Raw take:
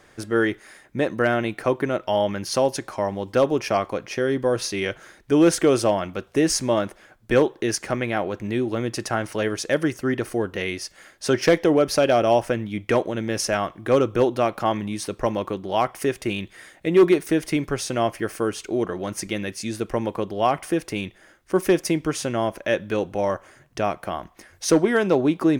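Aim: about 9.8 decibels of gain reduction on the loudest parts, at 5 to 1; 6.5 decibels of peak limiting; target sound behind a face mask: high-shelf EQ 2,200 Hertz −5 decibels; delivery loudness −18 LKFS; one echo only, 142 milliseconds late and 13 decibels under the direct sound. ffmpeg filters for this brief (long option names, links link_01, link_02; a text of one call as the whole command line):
ffmpeg -i in.wav -af "acompressor=threshold=-23dB:ratio=5,alimiter=limit=-17.5dB:level=0:latency=1,highshelf=frequency=2200:gain=-5,aecho=1:1:142:0.224,volume=12.5dB" out.wav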